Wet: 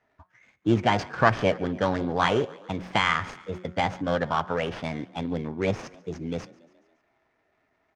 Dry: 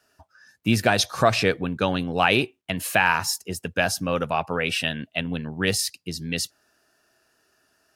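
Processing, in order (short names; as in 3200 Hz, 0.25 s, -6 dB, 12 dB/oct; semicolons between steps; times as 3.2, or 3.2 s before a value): median filter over 15 samples; de-hum 182.1 Hz, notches 10; formant shift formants +4 st; air absorption 140 m; on a send: frequency-shifting echo 0.141 s, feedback 58%, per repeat +38 Hz, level -22 dB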